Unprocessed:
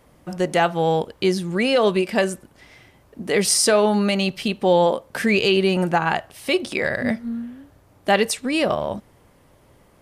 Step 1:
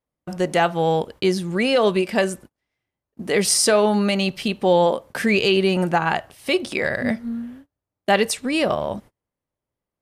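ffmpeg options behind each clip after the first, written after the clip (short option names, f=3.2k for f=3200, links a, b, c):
-af "agate=range=-32dB:threshold=-40dB:ratio=16:detection=peak"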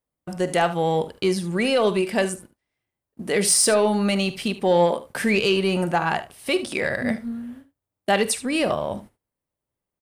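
-af "aexciter=amount=1.9:drive=3:freq=8.3k,asoftclip=type=tanh:threshold=-7dB,aecho=1:1:46|75:0.141|0.178,volume=-1.5dB"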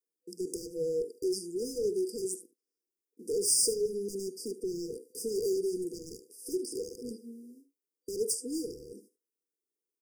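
-filter_complex "[0:a]highpass=f=340:w=0.5412,highpass=f=340:w=1.3066,asplit=2[a][b];[b]aeval=exprs='0.0562*(abs(mod(val(0)/0.0562+3,4)-2)-1)':c=same,volume=-3dB[c];[a][c]amix=inputs=2:normalize=0,afftfilt=real='re*(1-between(b*sr/4096,500,4700))':imag='im*(1-between(b*sr/4096,500,4700))':win_size=4096:overlap=0.75,volume=-7.5dB"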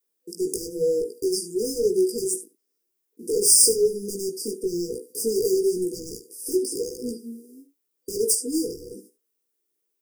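-af "flanger=delay=16:depth=3:speed=1,highshelf=f=11k:g=9,acontrast=39,volume=5.5dB"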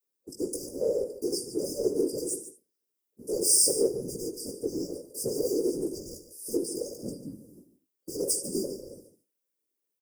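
-af "afftfilt=real='hypot(re,im)*cos(2*PI*random(0))':imag='hypot(re,im)*sin(2*PI*random(1))':win_size=512:overlap=0.75,aecho=1:1:145:0.224"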